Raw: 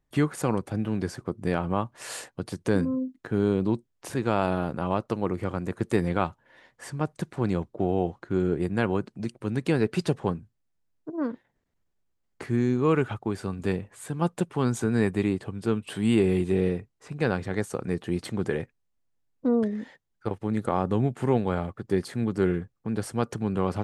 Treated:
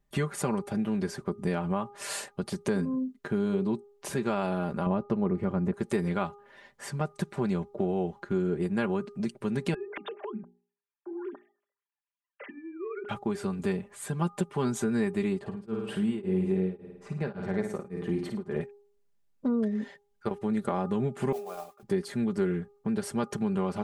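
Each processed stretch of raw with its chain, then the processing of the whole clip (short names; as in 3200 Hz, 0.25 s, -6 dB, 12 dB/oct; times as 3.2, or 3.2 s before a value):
4.86–5.74 LPF 1800 Hz 6 dB/oct + low shelf 410 Hz +8.5 dB
9.74–13.09 sine-wave speech + compressor 12:1, threshold -35 dBFS + notches 60/120/180/240/300/360/420 Hz
15.39–18.61 high shelf 2500 Hz -10.5 dB + flutter echo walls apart 9.2 m, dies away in 0.55 s + beating tremolo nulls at 1.8 Hz
21.32–21.83 vowel filter a + modulation noise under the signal 15 dB + AM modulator 75 Hz, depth 25%
whole clip: comb 5 ms, depth 72%; de-hum 407.6 Hz, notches 3; compressor 2.5:1, threshold -27 dBFS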